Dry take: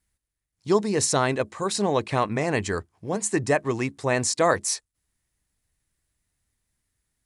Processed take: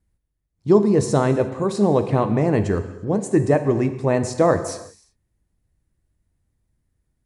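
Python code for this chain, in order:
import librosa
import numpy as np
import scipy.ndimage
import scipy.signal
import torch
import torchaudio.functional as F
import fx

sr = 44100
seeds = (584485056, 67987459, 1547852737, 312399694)

y = fx.tilt_shelf(x, sr, db=9.0, hz=970.0)
y = fx.rev_gated(y, sr, seeds[0], gate_ms=390, shape='falling', drr_db=8.5)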